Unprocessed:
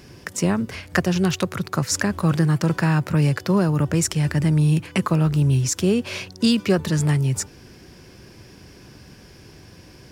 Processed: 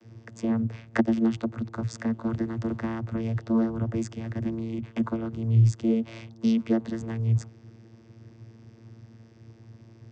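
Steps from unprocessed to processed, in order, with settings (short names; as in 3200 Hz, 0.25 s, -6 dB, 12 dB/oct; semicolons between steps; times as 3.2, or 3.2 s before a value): 0.82–1.3 transient shaper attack +7 dB, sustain -5 dB; vocoder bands 16, saw 113 Hz; gain -5.5 dB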